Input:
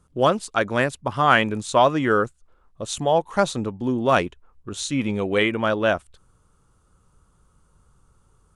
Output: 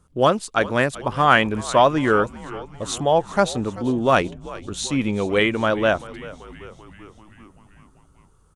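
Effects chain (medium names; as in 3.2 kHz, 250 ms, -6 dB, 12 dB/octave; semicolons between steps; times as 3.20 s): frequency-shifting echo 387 ms, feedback 64%, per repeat -82 Hz, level -18 dB; trim +1.5 dB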